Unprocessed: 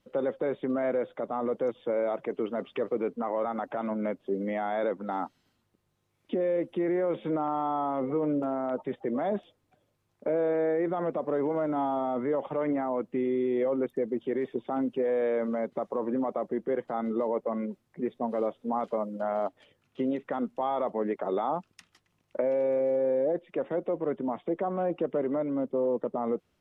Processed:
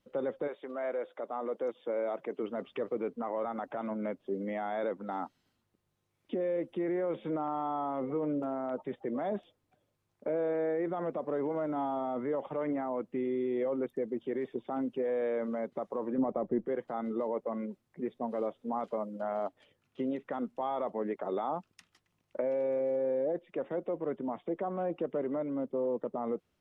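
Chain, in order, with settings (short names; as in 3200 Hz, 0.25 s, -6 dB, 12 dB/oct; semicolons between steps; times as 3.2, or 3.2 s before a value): 0.47–2.42 HPF 570 Hz -> 170 Hz 12 dB/oct; 16.18–16.66 tilt -3 dB/oct; gain -4.5 dB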